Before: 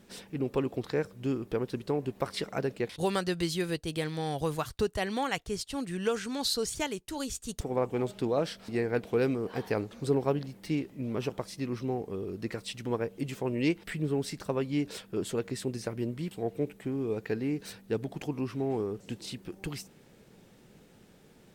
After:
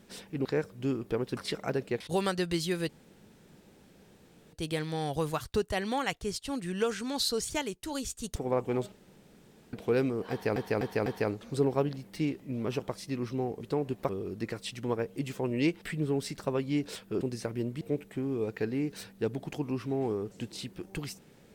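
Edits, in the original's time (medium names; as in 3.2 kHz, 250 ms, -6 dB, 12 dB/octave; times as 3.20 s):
0.45–0.86 s: delete
1.78–2.26 s: move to 12.11 s
3.78 s: insert room tone 1.64 s
8.17–8.98 s: room tone
9.56–9.81 s: loop, 4 plays
15.23–15.63 s: delete
16.23–16.50 s: delete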